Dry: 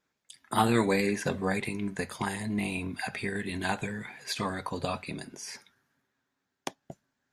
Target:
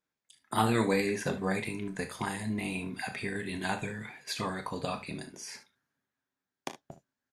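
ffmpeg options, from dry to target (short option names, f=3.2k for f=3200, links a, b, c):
-af "agate=range=-7dB:threshold=-47dB:ratio=16:detection=peak,aecho=1:1:27|37|61|74:0.251|0.237|0.15|0.168,volume=-2.5dB"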